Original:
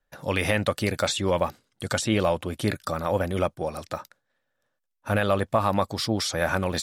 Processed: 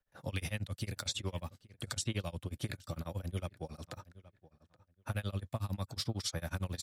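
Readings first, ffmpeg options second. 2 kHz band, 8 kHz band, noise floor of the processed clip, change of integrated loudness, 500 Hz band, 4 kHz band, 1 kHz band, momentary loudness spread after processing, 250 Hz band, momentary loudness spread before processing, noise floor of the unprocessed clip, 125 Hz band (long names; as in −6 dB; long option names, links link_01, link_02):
−16.5 dB, −9.0 dB, −79 dBFS, −13.5 dB, −20.5 dB, −10.0 dB, −20.5 dB, 12 LU, −15.0 dB, 9 LU, −78 dBFS, −7.5 dB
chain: -filter_complex "[0:a]equalizer=frequency=100:width_type=o:width=1:gain=8,acrossover=split=510|1800[link_01][link_02][link_03];[link_01]alimiter=limit=-20dB:level=0:latency=1:release=386[link_04];[link_04][link_02][link_03]amix=inputs=3:normalize=0,acrossover=split=280|3000[link_05][link_06][link_07];[link_06]acompressor=threshold=-36dB:ratio=6[link_08];[link_05][link_08][link_07]amix=inputs=3:normalize=0,asplit=2[link_09][link_10];[link_10]adelay=825,lowpass=frequency=2900:poles=1,volume=-19dB,asplit=2[link_11][link_12];[link_12]adelay=825,lowpass=frequency=2900:poles=1,volume=0.21[link_13];[link_09][link_11][link_13]amix=inputs=3:normalize=0,tremolo=f=11:d=0.97,volume=-5dB"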